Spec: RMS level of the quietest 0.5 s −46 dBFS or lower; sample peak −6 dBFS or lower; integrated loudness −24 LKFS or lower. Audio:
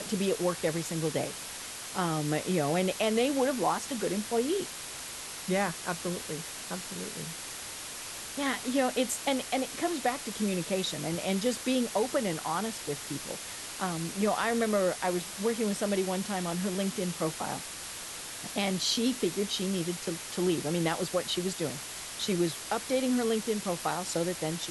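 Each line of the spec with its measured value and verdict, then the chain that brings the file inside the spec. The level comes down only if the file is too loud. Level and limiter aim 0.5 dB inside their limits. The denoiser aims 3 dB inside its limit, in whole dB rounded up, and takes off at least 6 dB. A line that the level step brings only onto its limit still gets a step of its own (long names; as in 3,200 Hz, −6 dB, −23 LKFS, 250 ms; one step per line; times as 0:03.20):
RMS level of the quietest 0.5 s −41 dBFS: out of spec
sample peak −15.5 dBFS: in spec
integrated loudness −31.0 LKFS: in spec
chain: broadband denoise 8 dB, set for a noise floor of −41 dBFS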